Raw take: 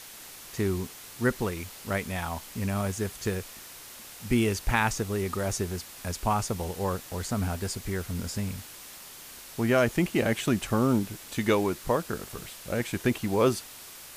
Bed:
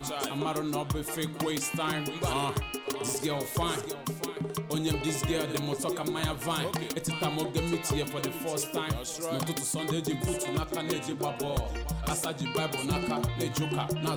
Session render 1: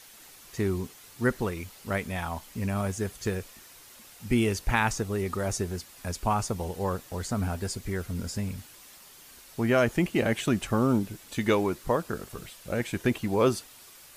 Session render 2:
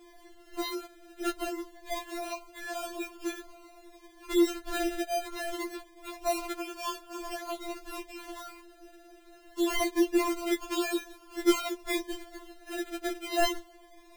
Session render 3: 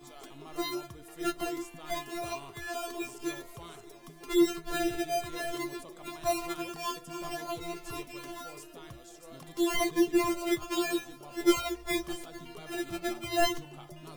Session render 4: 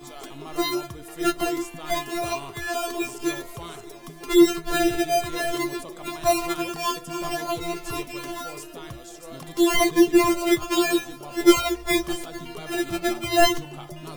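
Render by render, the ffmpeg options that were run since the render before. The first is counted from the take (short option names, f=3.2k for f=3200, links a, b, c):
-af "afftdn=nr=7:nf=-46"
-af "acrusher=samples=31:mix=1:aa=0.000001:lfo=1:lforange=18.6:lforate=0.25,afftfilt=real='re*4*eq(mod(b,16),0)':imag='im*4*eq(mod(b,16),0)':win_size=2048:overlap=0.75"
-filter_complex "[1:a]volume=-17.5dB[a];[0:a][a]amix=inputs=2:normalize=0"
-af "volume=9dB"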